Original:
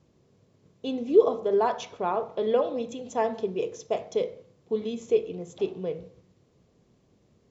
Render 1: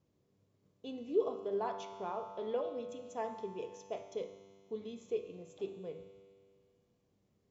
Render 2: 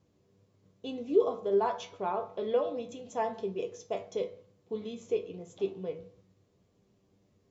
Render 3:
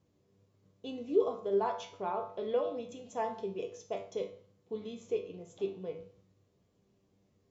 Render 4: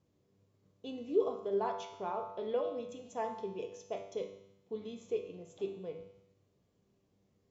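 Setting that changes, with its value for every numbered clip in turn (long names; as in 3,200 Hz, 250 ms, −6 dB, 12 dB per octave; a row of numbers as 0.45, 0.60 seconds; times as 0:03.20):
tuned comb filter, decay: 2.2, 0.17, 0.4, 0.89 seconds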